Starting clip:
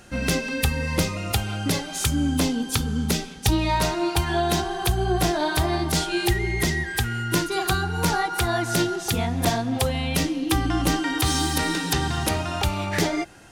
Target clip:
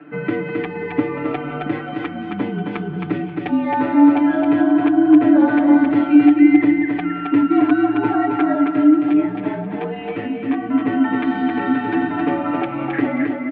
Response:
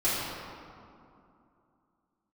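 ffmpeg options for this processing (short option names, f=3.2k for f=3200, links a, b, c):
-filter_complex "[0:a]acompressor=threshold=-25dB:ratio=2,asplit=3[a][b][c];[a]afade=t=out:st=8.41:d=0.02[d];[b]flanger=delay=15:depth=6.6:speed=1.2,afade=t=in:st=8.41:d=0.02,afade=t=out:st=10.72:d=0.02[e];[c]afade=t=in:st=10.72:d=0.02[f];[d][e][f]amix=inputs=3:normalize=0,highpass=f=230:t=q:w=0.5412,highpass=f=230:t=q:w=1.307,lowpass=f=2.5k:t=q:w=0.5176,lowpass=f=2.5k:t=q:w=0.7071,lowpass=f=2.5k:t=q:w=1.932,afreqshift=-58,equalizer=f=310:t=o:w=0.45:g=14.5,aecho=1:1:6.8:0.96,aecho=1:1:267|534|801:0.631|0.145|0.0334,volume=1dB"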